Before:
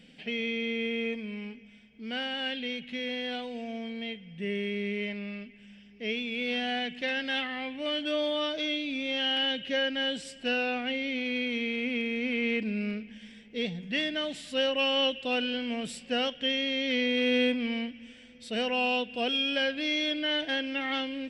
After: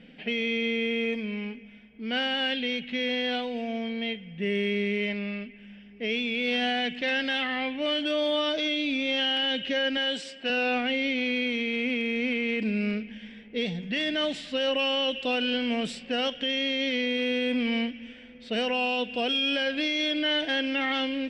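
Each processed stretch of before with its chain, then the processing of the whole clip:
0:09.97–0:10.50: high-pass filter 380 Hz 6 dB per octave + floating-point word with a short mantissa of 8 bits
whole clip: low-pass that shuts in the quiet parts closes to 2,200 Hz, open at −25.5 dBFS; brickwall limiter −25 dBFS; parametric band 110 Hz −12 dB 0.53 octaves; level +6 dB

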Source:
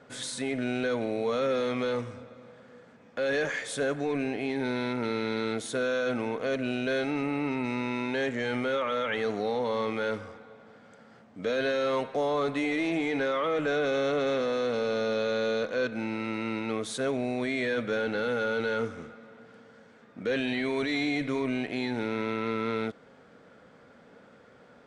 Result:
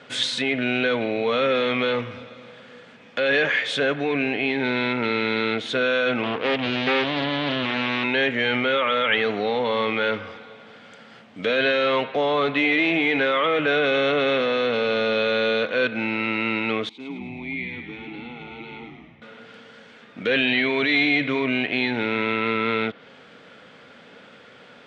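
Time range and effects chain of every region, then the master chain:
0:06.23–0:08.04: mains-hum notches 60/120/180/240/300 Hz + highs frequency-modulated by the lows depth 0.71 ms
0:16.89–0:19.22: formant filter u + echo with shifted repeats 106 ms, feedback 53%, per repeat −85 Hz, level −5 dB
whole clip: treble cut that deepens with the level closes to 2,900 Hz, closed at −29.5 dBFS; high-pass filter 88 Hz; parametric band 3,000 Hz +13.5 dB 1.4 octaves; level +5 dB

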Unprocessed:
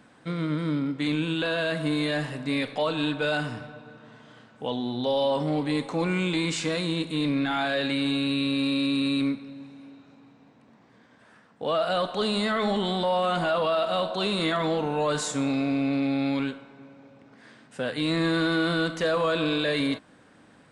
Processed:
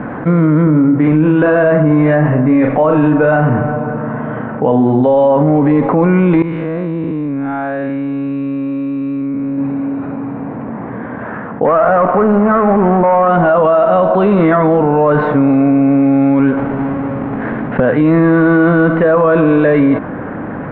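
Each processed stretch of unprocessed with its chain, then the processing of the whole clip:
0:00.63–0:05.03: parametric band 5,600 Hz −14.5 dB 0.98 octaves + double-tracking delay 39 ms −7 dB
0:06.42–0:09.58: spectrum smeared in time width 142 ms + output level in coarse steps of 23 dB + Savitzky-Golay smoothing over 15 samples
0:11.65–0:13.28: running median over 25 samples + parametric band 1,300 Hz +9.5 dB 1.1 octaves
0:16.57–0:17.80: each half-wave held at its own peak + high-shelf EQ 6,100 Hz +8 dB
whole clip: Bessel low-pass filter 1,200 Hz, order 6; boost into a limiter +22.5 dB; envelope flattener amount 50%; level −3.5 dB

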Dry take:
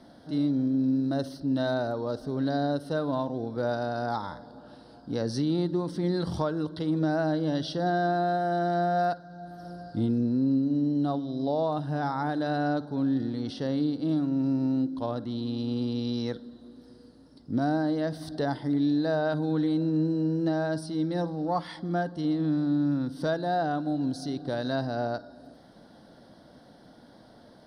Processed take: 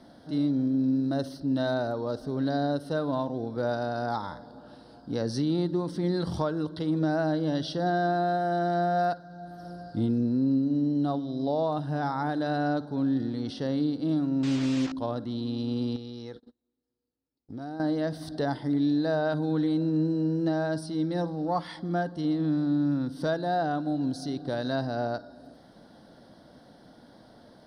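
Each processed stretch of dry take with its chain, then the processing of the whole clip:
0:14.43–0:14.92: linear delta modulator 32 kbit/s, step −31 dBFS + high-shelf EQ 4,400 Hz +4.5 dB + highs frequency-modulated by the lows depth 0.31 ms
0:15.96–0:17.80: noise gate −42 dBFS, range −34 dB + comb filter 2.4 ms, depth 31% + downward compressor 2 to 1, threshold −43 dBFS
whole clip: no processing

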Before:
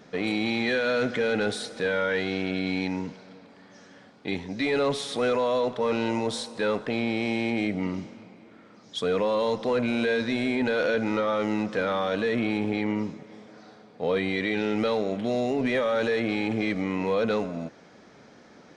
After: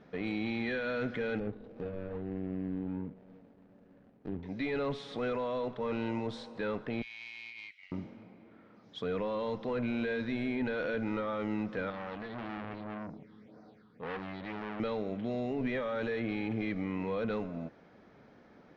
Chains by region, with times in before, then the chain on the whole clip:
0:01.38–0:04.43: running median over 41 samples + dynamic equaliser 1,400 Hz, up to −4 dB, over −48 dBFS, Q 0.73 + treble cut that deepens with the level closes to 2,200 Hz, closed at −29.5 dBFS
0:07.02–0:07.92: Butterworth high-pass 2,100 Hz + highs frequency-modulated by the lows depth 0.46 ms
0:11.90–0:14.80: all-pass phaser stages 6, 1.9 Hz, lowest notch 590–3,100 Hz + saturating transformer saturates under 1,600 Hz
whole clip: dynamic equaliser 630 Hz, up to −4 dB, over −34 dBFS, Q 0.84; Bessel low-pass filter 2,400 Hz, order 2; low-shelf EQ 68 Hz +10.5 dB; level −6.5 dB

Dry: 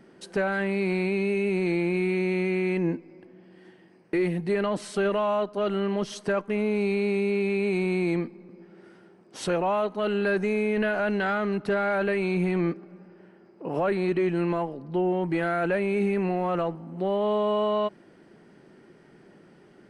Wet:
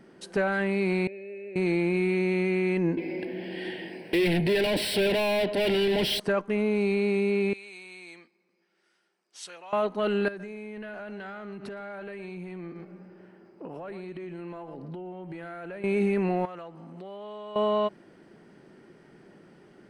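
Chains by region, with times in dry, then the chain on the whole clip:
0:01.07–0:01.56: formant filter e + parametric band 3,200 Hz −12.5 dB 0.58 octaves
0:02.97–0:06.20: mid-hump overdrive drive 31 dB, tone 7,300 Hz, clips at −16.5 dBFS + phaser with its sweep stopped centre 2,900 Hz, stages 4
0:07.53–0:09.73: low-pass filter 7,200 Hz + first difference
0:10.28–0:15.84: single-tap delay 114 ms −13.5 dB + downward compressor 16 to 1, threshold −35 dBFS
0:16.45–0:17.56: low-pass filter 9,000 Hz + downward compressor, threshold −36 dBFS + spectral tilt +2 dB per octave
whole clip: no processing

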